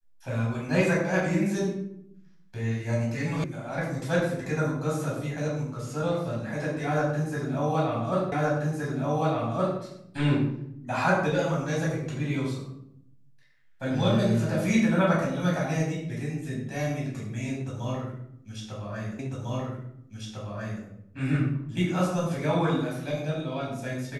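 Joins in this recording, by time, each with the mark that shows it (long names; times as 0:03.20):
0:03.44: cut off before it has died away
0:08.32: the same again, the last 1.47 s
0:19.19: the same again, the last 1.65 s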